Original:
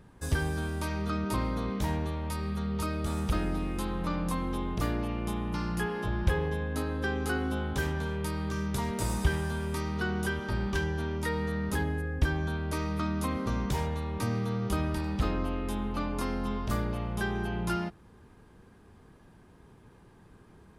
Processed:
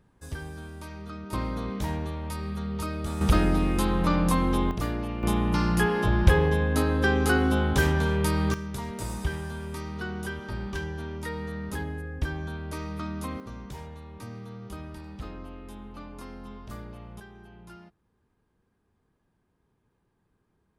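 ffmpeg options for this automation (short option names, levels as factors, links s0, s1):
-af "asetnsamples=n=441:p=0,asendcmd='1.33 volume volume 0dB;3.21 volume volume 8dB;4.71 volume volume 0.5dB;5.23 volume volume 8dB;8.54 volume volume -3dB;13.4 volume volume -10dB;17.2 volume volume -17dB',volume=0.398"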